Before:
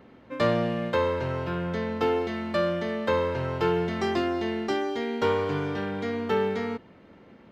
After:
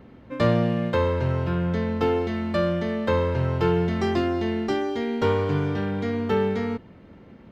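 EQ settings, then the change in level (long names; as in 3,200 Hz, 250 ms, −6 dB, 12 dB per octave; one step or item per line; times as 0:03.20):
low-shelf EQ 190 Hz +12 dB
0.0 dB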